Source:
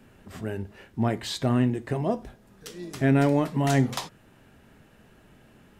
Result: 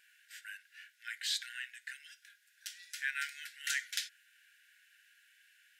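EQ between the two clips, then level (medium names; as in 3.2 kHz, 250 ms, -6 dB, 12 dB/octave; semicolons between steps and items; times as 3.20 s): brick-wall FIR high-pass 1.4 kHz; -1.5 dB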